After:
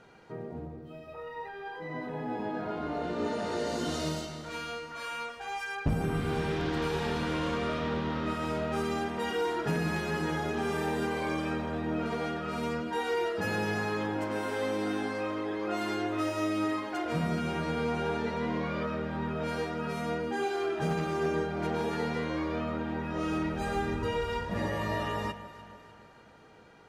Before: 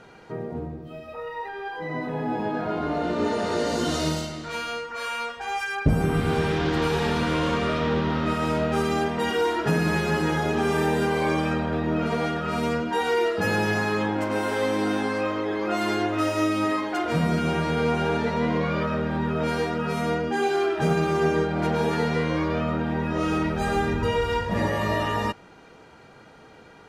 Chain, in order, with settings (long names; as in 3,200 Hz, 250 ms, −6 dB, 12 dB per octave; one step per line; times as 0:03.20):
wavefolder on the positive side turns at −14.5 dBFS
on a send: delay that swaps between a low-pass and a high-pass 149 ms, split 1,000 Hz, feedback 72%, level −12.5 dB
on the sum: level −7.5 dB